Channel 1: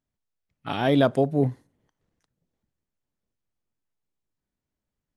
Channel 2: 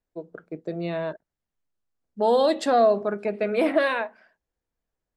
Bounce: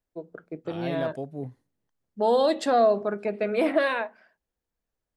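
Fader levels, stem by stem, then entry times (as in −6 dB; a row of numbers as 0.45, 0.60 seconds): −13.0, −1.5 decibels; 0.00, 0.00 seconds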